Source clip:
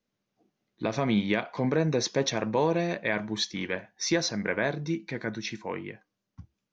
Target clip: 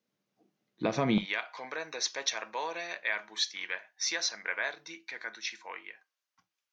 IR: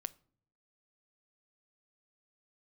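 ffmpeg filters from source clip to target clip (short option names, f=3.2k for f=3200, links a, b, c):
-filter_complex "[0:a]asetnsamples=n=441:p=0,asendcmd='1.18 highpass f 1100',highpass=130[a];[1:a]atrim=start_sample=2205,afade=t=out:st=0.13:d=0.01,atrim=end_sample=6174,asetrate=48510,aresample=44100[b];[a][b]afir=irnorm=-1:irlink=0,volume=3dB"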